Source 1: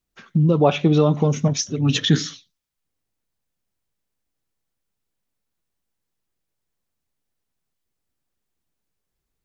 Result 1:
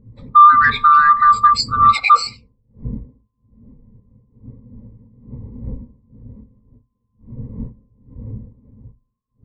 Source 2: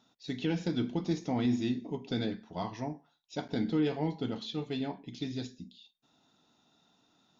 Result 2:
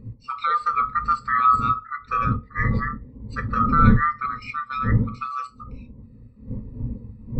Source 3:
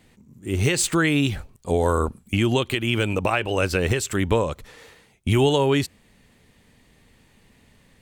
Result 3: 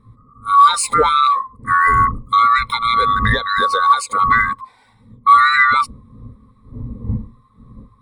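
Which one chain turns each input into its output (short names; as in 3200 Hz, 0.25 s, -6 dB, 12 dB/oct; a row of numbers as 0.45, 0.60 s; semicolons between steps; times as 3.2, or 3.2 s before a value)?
band-swap scrambler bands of 1000 Hz; wind noise 190 Hz -39 dBFS; ripple EQ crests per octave 0.95, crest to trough 11 dB; in parallel at -0.5 dB: limiter -15 dBFS; on the sum: sine folder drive 3 dB, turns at -2 dBFS; spectral expander 1.5:1; normalise peaks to -1.5 dBFS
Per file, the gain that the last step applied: +0.5, +1.5, 0.0 dB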